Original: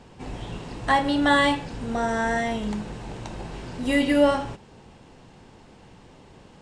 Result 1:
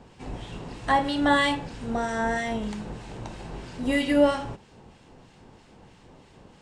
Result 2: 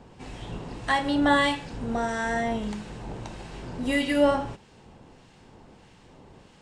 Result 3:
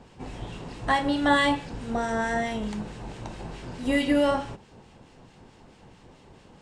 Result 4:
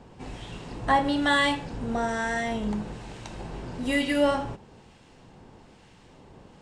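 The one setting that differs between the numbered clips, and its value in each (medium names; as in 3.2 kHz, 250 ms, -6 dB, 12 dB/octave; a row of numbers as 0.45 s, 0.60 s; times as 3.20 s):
harmonic tremolo, rate: 3.1 Hz, 1.6 Hz, 4.6 Hz, 1.1 Hz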